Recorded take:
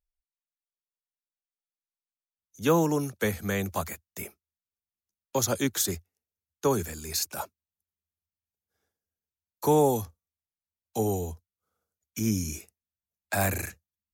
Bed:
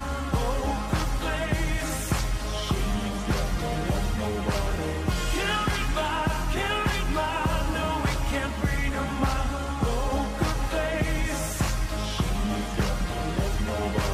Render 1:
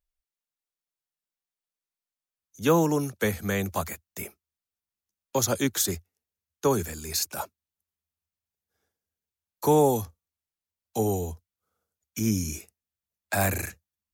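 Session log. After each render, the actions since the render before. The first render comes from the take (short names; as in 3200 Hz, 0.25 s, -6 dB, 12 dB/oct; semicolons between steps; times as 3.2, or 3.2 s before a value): gain +1.5 dB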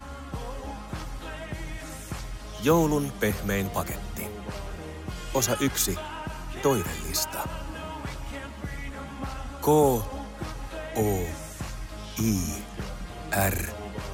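add bed -9.5 dB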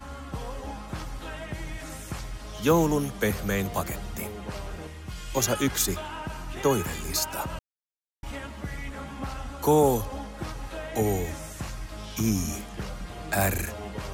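4.87–5.37 bell 470 Hz -8.5 dB 2.7 oct; 7.59–8.23 mute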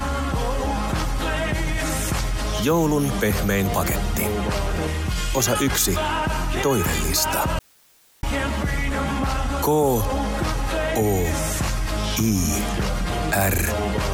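fast leveller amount 70%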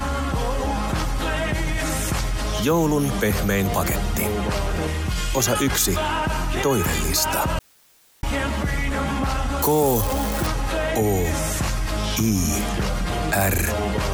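9.62–10.47 switching spikes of -20 dBFS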